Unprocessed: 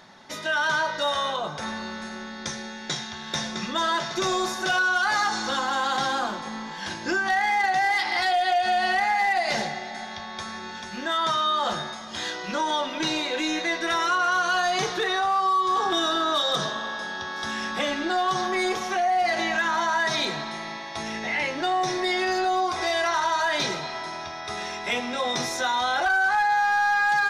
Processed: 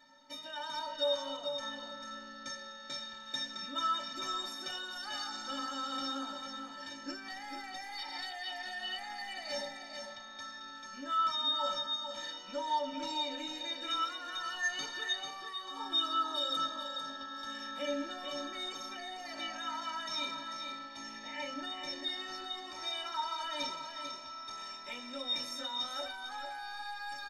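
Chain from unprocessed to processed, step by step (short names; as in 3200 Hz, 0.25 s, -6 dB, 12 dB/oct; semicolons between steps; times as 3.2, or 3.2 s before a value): metallic resonator 270 Hz, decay 0.24 s, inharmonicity 0.03; echo 0.445 s -7 dB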